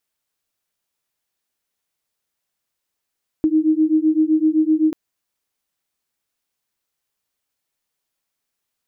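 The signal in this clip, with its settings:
two tones that beat 309 Hz, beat 7.8 Hz, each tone −16.5 dBFS 1.49 s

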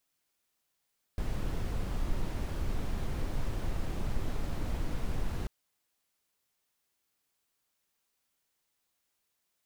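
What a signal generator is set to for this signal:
noise brown, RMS −31 dBFS 4.29 s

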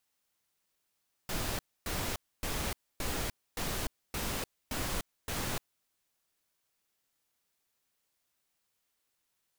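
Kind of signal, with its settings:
noise bursts pink, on 0.30 s, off 0.27 s, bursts 8, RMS −34.5 dBFS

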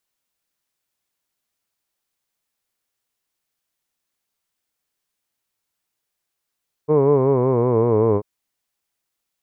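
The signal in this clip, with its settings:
vowel by formant synthesis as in hood, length 1.34 s, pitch 148 Hz, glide −6 semitones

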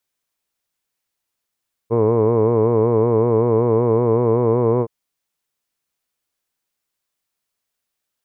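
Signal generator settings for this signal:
vowel by formant synthesis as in hood, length 2.97 s, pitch 112 Hz, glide +1 semitone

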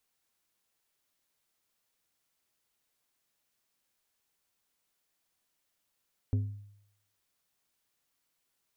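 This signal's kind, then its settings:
struck glass plate, lowest mode 102 Hz, decay 0.74 s, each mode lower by 9.5 dB, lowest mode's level −23 dB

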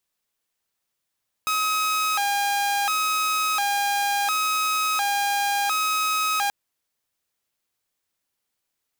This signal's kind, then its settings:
siren hi-lo 808–1,270 Hz 0.71 per second saw −18.5 dBFS 5.03 s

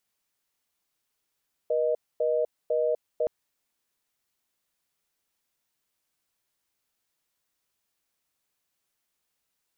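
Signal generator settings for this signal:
call progress tone reorder tone, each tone −25 dBFS 1.57 s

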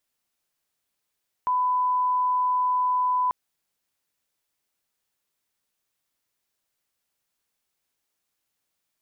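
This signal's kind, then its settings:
line-up tone −20 dBFS 1.84 s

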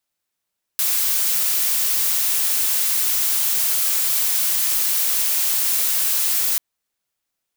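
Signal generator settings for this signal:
noise blue, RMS −19.5 dBFS 5.79 s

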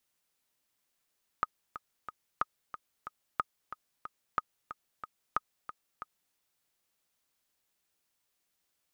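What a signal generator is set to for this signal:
click track 183 BPM, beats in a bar 3, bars 5, 1,250 Hz, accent 12.5 dB −14.5 dBFS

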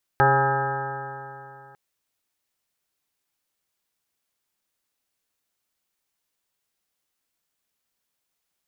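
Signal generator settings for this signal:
stiff-string partials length 1.55 s, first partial 134 Hz, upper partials −14/−1.5/−3/−12/5.5/−7/−19/0/−11.5/−0.5/−11 dB, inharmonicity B 0.0015, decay 2.82 s, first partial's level −22 dB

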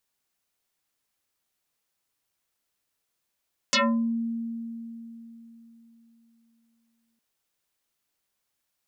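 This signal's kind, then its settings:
two-operator FM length 3.46 s, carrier 230 Hz, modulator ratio 3.45, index 9.5, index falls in 0.37 s exponential, decay 3.75 s, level −18 dB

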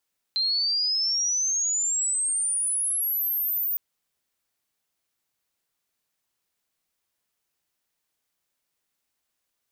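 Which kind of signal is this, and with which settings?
glide logarithmic 4,100 Hz → 15,000 Hz −21.5 dBFS → −23.5 dBFS 3.41 s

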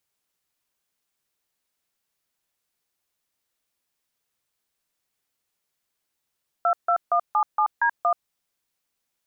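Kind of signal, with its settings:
touch tones "22177D1", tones 81 ms, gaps 152 ms, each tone −20 dBFS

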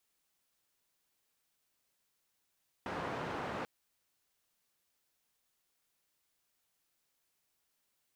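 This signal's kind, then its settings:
band-limited noise 97–1,100 Hz, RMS −39.5 dBFS 0.79 s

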